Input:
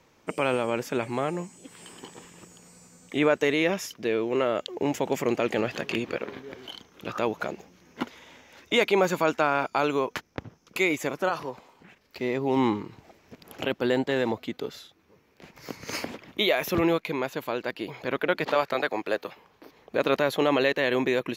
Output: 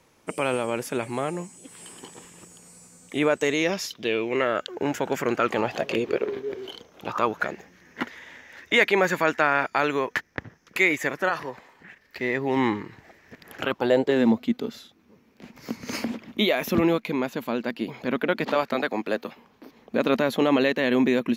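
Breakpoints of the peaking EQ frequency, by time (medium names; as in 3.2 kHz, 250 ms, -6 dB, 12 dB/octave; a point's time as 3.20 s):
peaking EQ +14 dB 0.44 oct
3.27 s 10 kHz
4.57 s 1.5 kHz
5.37 s 1.5 kHz
6.08 s 400 Hz
6.71 s 400 Hz
7.45 s 1.8 kHz
13.56 s 1.8 kHz
14.26 s 230 Hz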